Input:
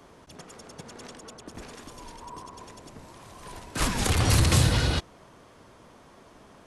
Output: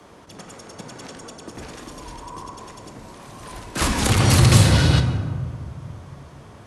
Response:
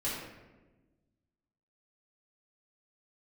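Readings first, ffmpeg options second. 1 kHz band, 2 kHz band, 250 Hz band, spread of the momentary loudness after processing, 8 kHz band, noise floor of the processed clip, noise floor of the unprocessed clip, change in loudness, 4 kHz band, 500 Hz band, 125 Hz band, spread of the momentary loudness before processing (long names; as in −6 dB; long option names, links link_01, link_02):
+6.0 dB, +6.0 dB, +8.5 dB, 24 LU, +5.5 dB, −45 dBFS, −54 dBFS, +6.0 dB, +5.5 dB, +6.5 dB, +8.5 dB, 23 LU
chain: -filter_complex "[0:a]afreqshift=19,asplit=2[link_01][link_02];[1:a]atrim=start_sample=2205,asetrate=22050,aresample=44100[link_03];[link_02][link_03]afir=irnorm=-1:irlink=0,volume=-14dB[link_04];[link_01][link_04]amix=inputs=2:normalize=0,volume=3.5dB"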